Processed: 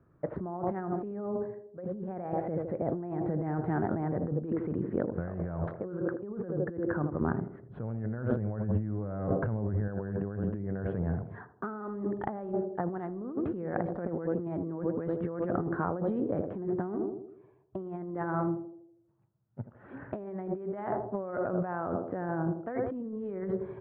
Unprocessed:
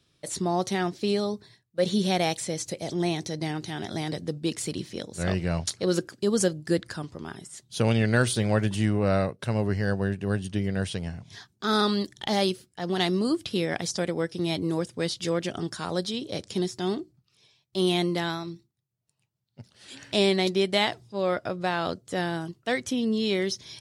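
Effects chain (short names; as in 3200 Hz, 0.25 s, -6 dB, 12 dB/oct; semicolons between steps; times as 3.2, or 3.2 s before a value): steep low-pass 1500 Hz 36 dB/oct; narrowing echo 80 ms, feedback 55%, band-pass 420 Hz, level -9 dB; negative-ratio compressor -34 dBFS, ratio -1; 7.21–9.88 low shelf 250 Hz +8 dB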